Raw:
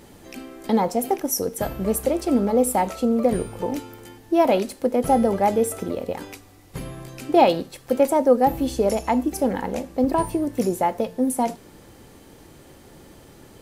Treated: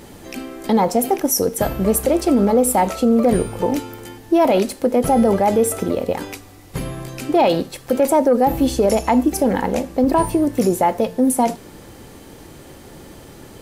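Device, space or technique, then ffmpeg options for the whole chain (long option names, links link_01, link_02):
soft clipper into limiter: -af "asoftclip=type=tanh:threshold=-5.5dB,alimiter=limit=-14.5dB:level=0:latency=1:release=37,volume=7dB"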